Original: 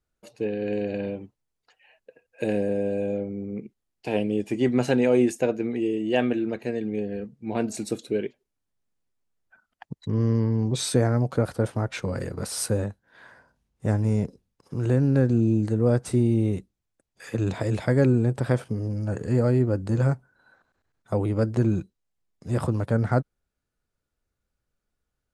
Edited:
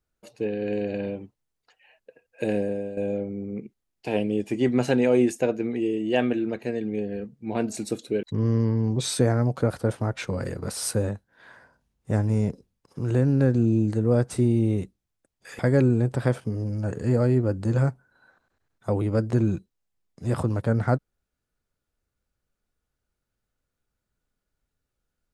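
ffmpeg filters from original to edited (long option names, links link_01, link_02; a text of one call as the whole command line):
ffmpeg -i in.wav -filter_complex "[0:a]asplit=4[link_01][link_02][link_03][link_04];[link_01]atrim=end=2.97,asetpts=PTS-STARTPTS,afade=type=out:start_time=2.57:duration=0.4:silence=0.298538[link_05];[link_02]atrim=start=2.97:end=8.232,asetpts=PTS-STARTPTS,afade=type=in:duration=0.004:curve=hsin:silence=0.298538[link_06];[link_03]atrim=start=9.978:end=17.342[link_07];[link_04]atrim=start=17.828[link_08];[link_05][link_06]concat=n=2:v=0:a=1[link_09];[link_09][link_07]acrossfade=duration=0.004:curve1=hsin:curve2=hsin[link_10];[link_10][link_08]acrossfade=duration=0.004:curve1=hsin:curve2=hsin" out.wav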